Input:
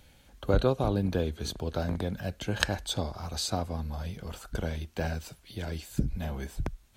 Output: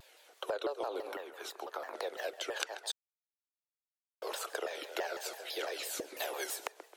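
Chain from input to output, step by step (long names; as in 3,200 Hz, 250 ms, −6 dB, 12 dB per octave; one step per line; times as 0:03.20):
0:06.16–0:06.66: high-shelf EQ 3,500 Hz +11 dB
tape delay 135 ms, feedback 57%, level −14.5 dB, low-pass 3,800 Hz
automatic gain control gain up to 8 dB
Butterworth high-pass 390 Hz 48 dB per octave
downward compressor 5 to 1, threshold −36 dBFS, peak gain reduction 17.5 dB
0:01.12–0:01.94: graphic EQ with 10 bands 500 Hz −11 dB, 1,000 Hz +6 dB, 4,000 Hz −10 dB, 8,000 Hz −4 dB
0:02.92–0:04.22: silence
pitch modulation by a square or saw wave saw down 6 Hz, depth 250 cents
level +1 dB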